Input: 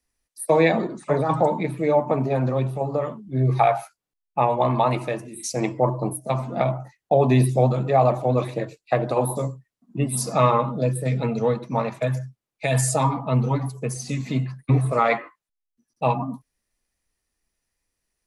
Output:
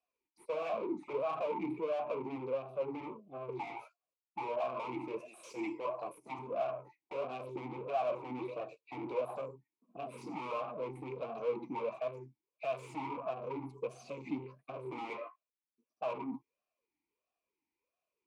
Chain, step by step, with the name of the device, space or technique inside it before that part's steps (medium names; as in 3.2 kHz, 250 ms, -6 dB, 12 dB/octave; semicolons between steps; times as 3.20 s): 5.20–6.39 s: tilt EQ +4 dB/octave; talk box (valve stage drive 32 dB, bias 0.3; talking filter a-u 1.5 Hz); trim +6.5 dB